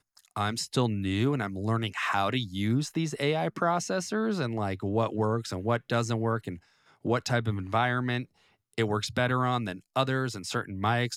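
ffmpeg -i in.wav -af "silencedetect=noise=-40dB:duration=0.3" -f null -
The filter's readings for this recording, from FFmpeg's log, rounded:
silence_start: 6.57
silence_end: 7.05 | silence_duration: 0.48
silence_start: 8.23
silence_end: 8.78 | silence_duration: 0.55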